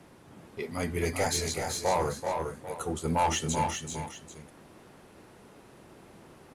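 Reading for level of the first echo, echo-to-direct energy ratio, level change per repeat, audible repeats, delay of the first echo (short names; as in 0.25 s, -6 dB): -7.5 dB, -4.0 dB, no steady repeat, 2, 0.383 s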